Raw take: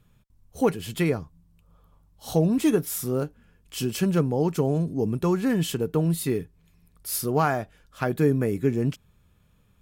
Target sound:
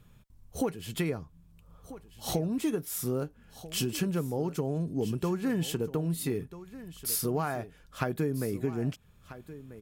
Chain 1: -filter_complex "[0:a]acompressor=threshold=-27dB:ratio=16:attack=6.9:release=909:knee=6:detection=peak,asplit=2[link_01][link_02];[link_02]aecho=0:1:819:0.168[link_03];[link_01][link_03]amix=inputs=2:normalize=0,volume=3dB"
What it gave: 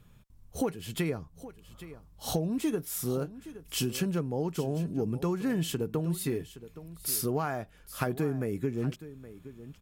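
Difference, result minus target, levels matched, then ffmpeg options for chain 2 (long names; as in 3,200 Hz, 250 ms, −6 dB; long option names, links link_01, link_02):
echo 471 ms early
-filter_complex "[0:a]acompressor=threshold=-27dB:ratio=16:attack=6.9:release=909:knee=6:detection=peak,asplit=2[link_01][link_02];[link_02]aecho=0:1:1290:0.168[link_03];[link_01][link_03]amix=inputs=2:normalize=0,volume=3dB"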